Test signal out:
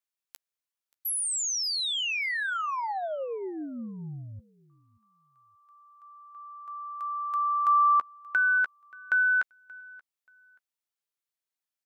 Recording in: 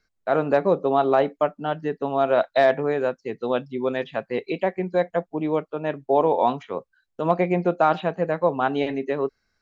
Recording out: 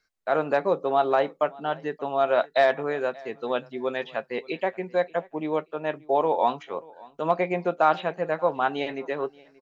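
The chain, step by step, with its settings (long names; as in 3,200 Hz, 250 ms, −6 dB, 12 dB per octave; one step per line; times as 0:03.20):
low-shelf EQ 350 Hz −11 dB
double-tracking delay 13 ms −14 dB
on a send: repeating echo 580 ms, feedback 23%, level −23.5 dB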